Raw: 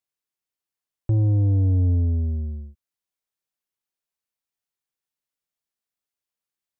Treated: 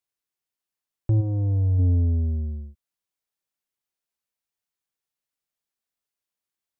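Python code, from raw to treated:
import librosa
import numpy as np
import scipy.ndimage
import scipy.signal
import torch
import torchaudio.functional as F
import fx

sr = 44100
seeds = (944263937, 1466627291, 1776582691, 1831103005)

y = fx.peak_eq(x, sr, hz=fx.line((1.2, 130.0), (1.78, 300.0)), db=-11.5, octaves=1.3, at=(1.2, 1.78), fade=0.02)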